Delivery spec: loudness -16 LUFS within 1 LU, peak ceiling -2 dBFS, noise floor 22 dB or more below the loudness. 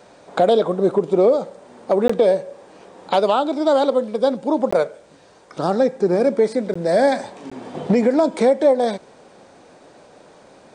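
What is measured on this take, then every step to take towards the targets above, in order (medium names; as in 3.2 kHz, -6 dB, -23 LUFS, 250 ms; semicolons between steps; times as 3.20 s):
dropouts 4; longest dropout 15 ms; loudness -18.5 LUFS; peak level -5.5 dBFS; loudness target -16.0 LUFS
-> interpolate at 2.08/4.71/6.74/7.50 s, 15 ms; trim +2.5 dB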